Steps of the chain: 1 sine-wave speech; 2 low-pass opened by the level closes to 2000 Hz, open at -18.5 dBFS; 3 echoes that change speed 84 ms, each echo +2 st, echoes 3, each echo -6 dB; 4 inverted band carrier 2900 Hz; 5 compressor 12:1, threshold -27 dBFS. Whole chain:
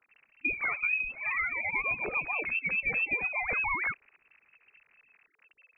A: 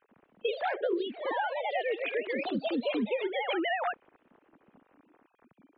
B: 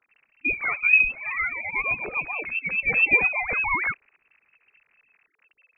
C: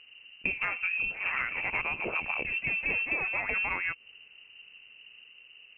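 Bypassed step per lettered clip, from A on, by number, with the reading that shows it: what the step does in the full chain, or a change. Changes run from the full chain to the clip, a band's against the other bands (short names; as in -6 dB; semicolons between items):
4, 2 kHz band -17.5 dB; 5, mean gain reduction 5.0 dB; 1, 1 kHz band -2.0 dB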